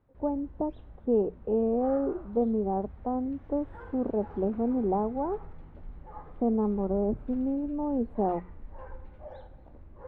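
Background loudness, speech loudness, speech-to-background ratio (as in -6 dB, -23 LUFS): -49.0 LUFS, -30.0 LUFS, 19.0 dB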